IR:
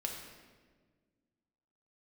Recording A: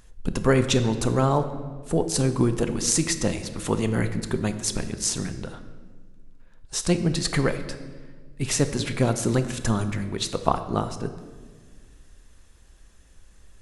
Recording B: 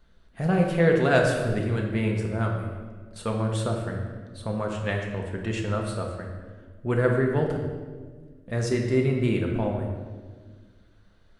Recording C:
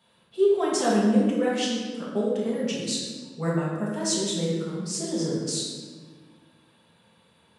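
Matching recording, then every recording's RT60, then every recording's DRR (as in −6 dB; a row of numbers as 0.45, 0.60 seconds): B; 1.6, 1.5, 1.5 seconds; 8.5, 0.5, −6.5 decibels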